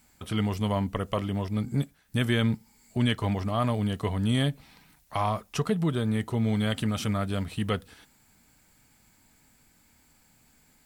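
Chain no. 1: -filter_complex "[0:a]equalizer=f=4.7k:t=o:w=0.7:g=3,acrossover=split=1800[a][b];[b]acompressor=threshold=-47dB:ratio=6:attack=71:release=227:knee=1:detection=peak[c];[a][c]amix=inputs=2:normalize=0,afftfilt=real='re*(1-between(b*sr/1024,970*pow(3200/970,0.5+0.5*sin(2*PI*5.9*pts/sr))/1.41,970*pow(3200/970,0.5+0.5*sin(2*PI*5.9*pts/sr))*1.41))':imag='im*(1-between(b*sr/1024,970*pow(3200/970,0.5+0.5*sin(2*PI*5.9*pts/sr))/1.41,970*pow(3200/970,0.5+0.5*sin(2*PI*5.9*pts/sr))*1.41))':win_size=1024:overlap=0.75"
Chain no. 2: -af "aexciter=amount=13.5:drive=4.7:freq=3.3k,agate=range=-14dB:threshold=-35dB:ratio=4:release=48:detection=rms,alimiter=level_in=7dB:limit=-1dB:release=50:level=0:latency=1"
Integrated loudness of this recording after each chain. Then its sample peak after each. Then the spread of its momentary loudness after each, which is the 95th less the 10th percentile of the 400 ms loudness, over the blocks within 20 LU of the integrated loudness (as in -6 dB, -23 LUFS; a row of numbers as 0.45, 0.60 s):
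-29.0, -16.5 LUFS; -14.5, -1.0 dBFS; 5, 7 LU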